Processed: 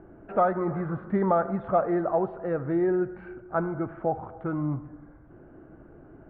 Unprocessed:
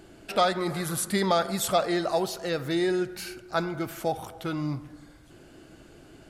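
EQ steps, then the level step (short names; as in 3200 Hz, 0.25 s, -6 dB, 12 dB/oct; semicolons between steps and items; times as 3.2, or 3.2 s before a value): LPF 1500 Hz 24 dB/oct; air absorption 300 m; +2.0 dB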